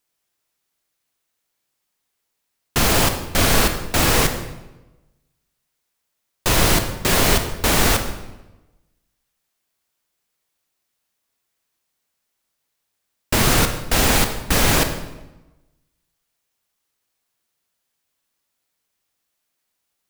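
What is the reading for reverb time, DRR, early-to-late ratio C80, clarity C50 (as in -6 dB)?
1.0 s, 6.0 dB, 10.5 dB, 8.5 dB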